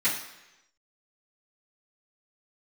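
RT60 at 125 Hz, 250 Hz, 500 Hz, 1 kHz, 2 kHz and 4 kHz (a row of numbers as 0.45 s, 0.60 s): 0.90 s, 0.85 s, 1.0 s, 1.0 s, 1.0 s, 0.95 s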